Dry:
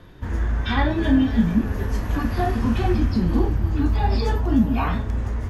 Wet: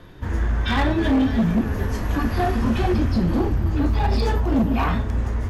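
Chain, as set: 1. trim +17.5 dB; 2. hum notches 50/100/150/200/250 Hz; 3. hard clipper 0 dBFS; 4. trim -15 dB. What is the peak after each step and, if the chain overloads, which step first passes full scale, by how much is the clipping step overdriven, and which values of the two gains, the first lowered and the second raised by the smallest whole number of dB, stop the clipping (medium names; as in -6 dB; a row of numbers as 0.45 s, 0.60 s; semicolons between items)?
+10.0 dBFS, +9.5 dBFS, 0.0 dBFS, -15.0 dBFS; step 1, 9.5 dB; step 1 +7.5 dB, step 4 -5 dB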